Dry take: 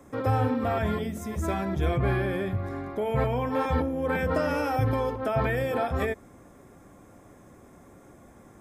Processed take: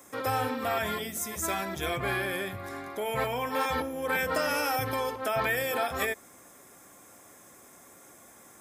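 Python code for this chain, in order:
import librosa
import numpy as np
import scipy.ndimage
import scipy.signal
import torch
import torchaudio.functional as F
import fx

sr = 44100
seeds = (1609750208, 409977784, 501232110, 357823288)

y = fx.tilt_eq(x, sr, slope=4.0)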